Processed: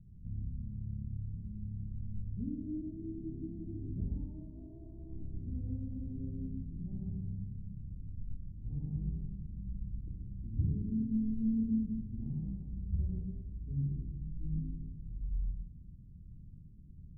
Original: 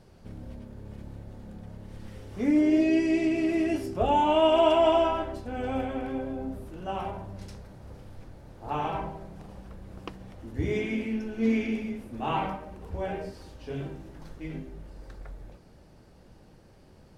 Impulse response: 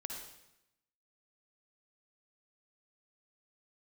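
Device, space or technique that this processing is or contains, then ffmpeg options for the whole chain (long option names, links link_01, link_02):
club heard from the street: -filter_complex "[0:a]alimiter=limit=-21dB:level=0:latency=1:release=207,lowpass=frequency=180:width=0.5412,lowpass=frequency=180:width=1.3066[link_01];[1:a]atrim=start_sample=2205[link_02];[link_01][link_02]afir=irnorm=-1:irlink=0,volume=6dB"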